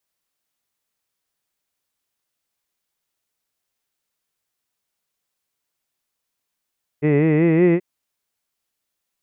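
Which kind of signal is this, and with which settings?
formant-synthesis vowel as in hid, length 0.78 s, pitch 143 Hz, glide +4 st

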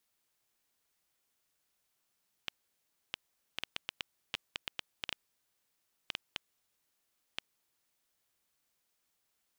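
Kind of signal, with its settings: random clicks 3.2 per s -17 dBFS 5.90 s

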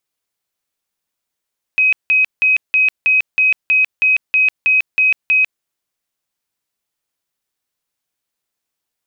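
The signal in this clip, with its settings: tone bursts 2.53 kHz, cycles 370, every 0.32 s, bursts 12, -9.5 dBFS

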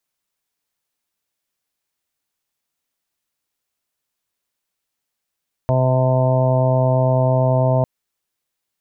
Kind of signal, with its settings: steady additive tone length 2.15 s, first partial 129 Hz, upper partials -11/-15/-8.5/-3/-19/-10.5/-19.5 dB, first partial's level -15.5 dB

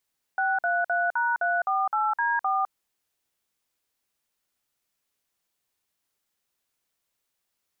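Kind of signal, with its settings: DTMF "633#348D4", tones 207 ms, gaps 51 ms, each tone -24.5 dBFS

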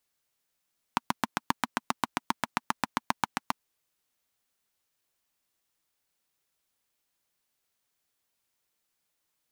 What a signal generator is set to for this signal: single-cylinder engine model, steady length 2.55 s, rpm 900, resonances 240/940 Hz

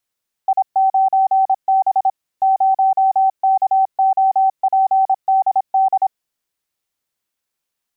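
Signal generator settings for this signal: Morse "I9B 0KOPDD" 26 wpm 769 Hz -10.5 dBFS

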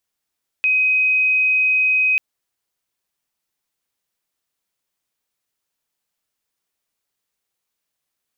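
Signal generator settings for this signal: tone sine 2.52 kHz -13.5 dBFS 1.54 s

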